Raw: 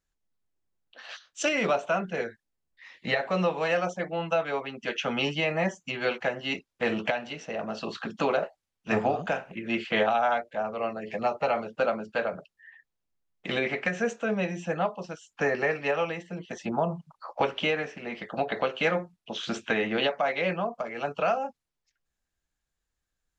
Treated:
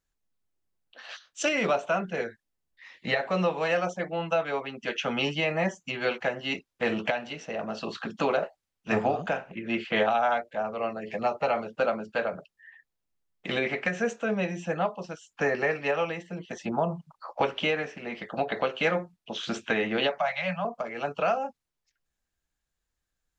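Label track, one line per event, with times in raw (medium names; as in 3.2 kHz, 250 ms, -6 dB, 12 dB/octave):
9.290000	9.960000	treble shelf 5.7 kHz -7 dB
20.180000	20.650000	Chebyshev band-stop 190–570 Hz, order 5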